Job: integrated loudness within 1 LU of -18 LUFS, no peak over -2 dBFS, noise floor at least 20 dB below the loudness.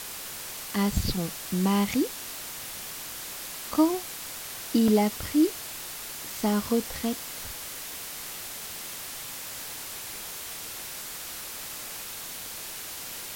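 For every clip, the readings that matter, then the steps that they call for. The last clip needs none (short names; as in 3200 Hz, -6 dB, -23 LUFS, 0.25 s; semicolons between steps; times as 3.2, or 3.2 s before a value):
dropouts 2; longest dropout 3.0 ms; noise floor -39 dBFS; noise floor target -50 dBFS; loudness -30.0 LUFS; peak -11.5 dBFS; loudness target -18.0 LUFS
-> interpolate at 3.74/4.88, 3 ms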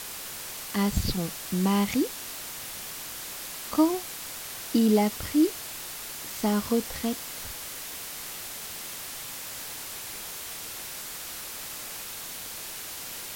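dropouts 0; noise floor -39 dBFS; noise floor target -50 dBFS
-> denoiser 11 dB, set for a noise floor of -39 dBFS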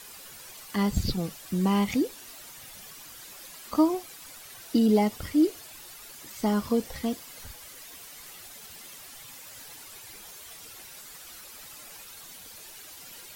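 noise floor -47 dBFS; loudness -27.0 LUFS; peak -12.0 dBFS; loudness target -18.0 LUFS
-> gain +9 dB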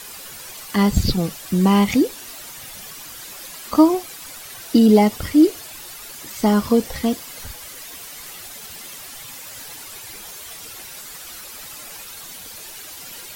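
loudness -18.0 LUFS; peak -3.0 dBFS; noise floor -38 dBFS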